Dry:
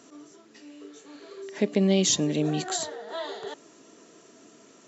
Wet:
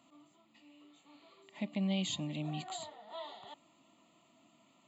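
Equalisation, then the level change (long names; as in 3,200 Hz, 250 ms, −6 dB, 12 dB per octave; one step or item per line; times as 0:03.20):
phaser with its sweep stopped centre 1,600 Hz, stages 6
−7.5 dB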